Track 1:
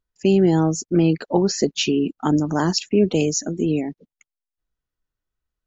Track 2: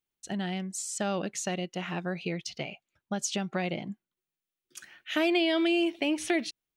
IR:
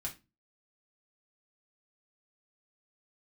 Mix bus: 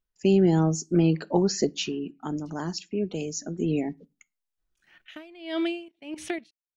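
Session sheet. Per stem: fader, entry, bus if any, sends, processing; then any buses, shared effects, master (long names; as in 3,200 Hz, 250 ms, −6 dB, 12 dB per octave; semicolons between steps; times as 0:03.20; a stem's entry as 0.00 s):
0:01.70 −5.5 dB → 0:01.94 −13 dB → 0:03.24 −13 dB → 0:03.97 −1.5 dB, 0.00 s, send −13.5 dB, no processing
+2.5 dB, 0.00 s, no send, output level in coarse steps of 14 dB; bass and treble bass +4 dB, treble −3 dB; tremolo with a sine in dB 1.6 Hz, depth 24 dB; automatic ducking −21 dB, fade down 1.35 s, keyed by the first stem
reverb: on, RT60 0.25 s, pre-delay 3 ms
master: no processing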